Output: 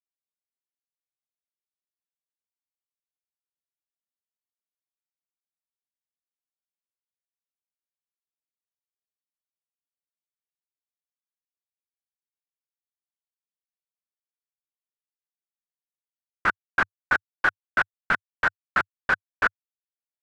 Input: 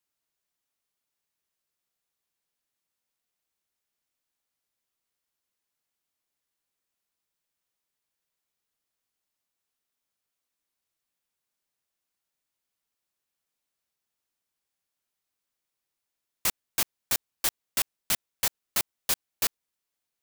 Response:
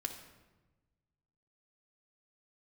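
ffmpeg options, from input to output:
-af "acrusher=bits=4:mix=0:aa=0.000001,lowpass=frequency=1500:width_type=q:width=8.2,equalizer=frequency=99:width_type=o:width=0.29:gain=-6,volume=5dB"

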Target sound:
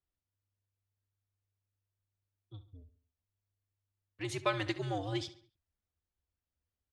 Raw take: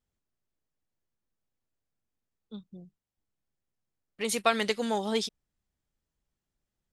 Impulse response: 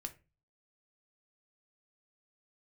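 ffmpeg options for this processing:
-filter_complex "[0:a]adynamicsmooth=sensitivity=0.5:basefreq=6100,asplit=2[link_01][link_02];[link_02]adelay=69,lowpass=frequency=4600:poles=1,volume=-14dB,asplit=2[link_03][link_04];[link_04]adelay=69,lowpass=frequency=4600:poles=1,volume=0.45,asplit=2[link_05][link_06];[link_06]adelay=69,lowpass=frequency=4600:poles=1,volume=0.45,asplit=2[link_07][link_08];[link_08]adelay=69,lowpass=frequency=4600:poles=1,volume=0.45[link_09];[link_01][link_03][link_05][link_07][link_09]amix=inputs=5:normalize=0,afreqshift=-99,volume=-6.5dB"

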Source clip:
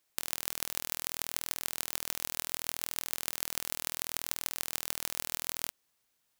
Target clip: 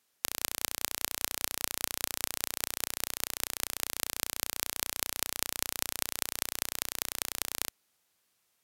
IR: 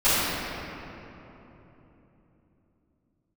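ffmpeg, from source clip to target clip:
-af "asetrate=32667,aresample=44100,highpass=frequency=65:poles=1,volume=1.5dB"

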